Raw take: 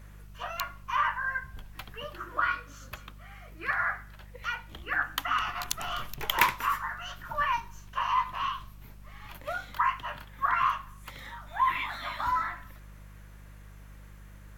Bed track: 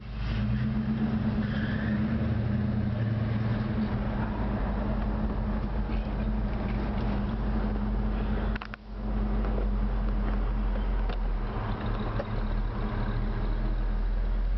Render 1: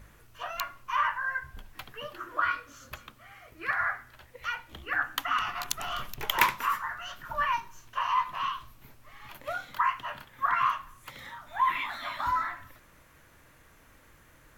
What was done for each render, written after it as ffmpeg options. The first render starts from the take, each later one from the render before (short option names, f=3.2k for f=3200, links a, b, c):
-af "bandreject=f=50:t=h:w=4,bandreject=f=100:t=h:w=4,bandreject=f=150:t=h:w=4,bandreject=f=200:t=h:w=4"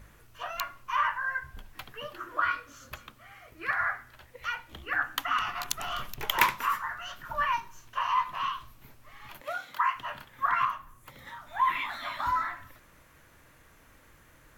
-filter_complex "[0:a]asettb=1/sr,asplit=3[a][b][c];[a]atrim=end=9.414[d];[b]atrim=start=9.41:end=9.96,asetpts=PTS-STARTPTS,afade=t=in:d=0.004:c=qsin,afade=t=out:st=0.546:d=0.004:c=qsin,highpass=f=320:p=1[e];[c]atrim=start=9.956[f];[d][e]acrossfade=d=0.004:c1=hsin:c2=qsin[g];[g][f]acrossfade=d=0.004:c1=qsin:c2=hsin,asettb=1/sr,asplit=3[h][i][j];[h]atrim=end=10.654[k];[i]atrim=start=10.65:end=11.27,asetpts=PTS-STARTPTS,afade=t=in:d=0.004:c=qsin,afade=t=out:st=0.616:d=0.004:c=qsin,equalizer=f=3.5k:w=0.32:g=-8[l];[j]atrim=start=11.266[m];[k][l]acrossfade=d=0.004:c1=hsin:c2=qsin[n];[n][m]acrossfade=d=0.004:c1=qsin:c2=hsin"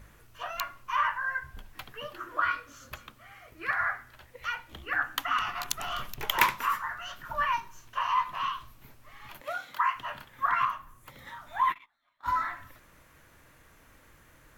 -filter_complex "[0:a]asettb=1/sr,asplit=3[a][b][c];[a]atrim=end=11.634[d];[b]atrim=start=11.63:end=12.28,asetpts=PTS-STARTPTS,afade=t=in:d=0.004:c=qsin,afade=t=out:st=0.646:d=0.004:c=qsin,agate=range=-39dB:threshold=-30dB:ratio=16:release=100:detection=peak[e];[c]atrim=start=12.276[f];[d][e]acrossfade=d=0.004:c1=hsin:c2=qsin[g];[g][f]acrossfade=d=0.004:c1=qsin:c2=hsin"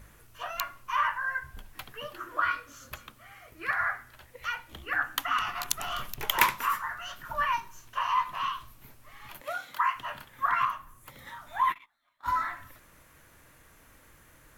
-af "equalizer=f=11k:t=o:w=1.1:g=5.5"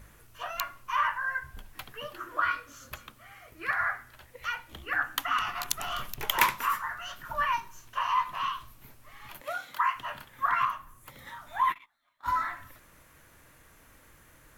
-af "asoftclip=type=tanh:threshold=-6dB"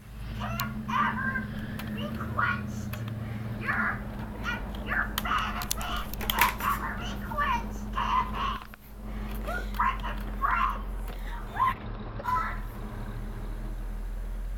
-filter_complex "[1:a]volume=-7dB[a];[0:a][a]amix=inputs=2:normalize=0"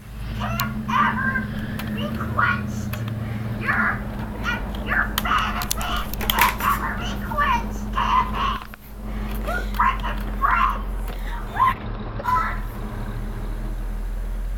-af "volume=7.5dB,alimiter=limit=-2dB:level=0:latency=1"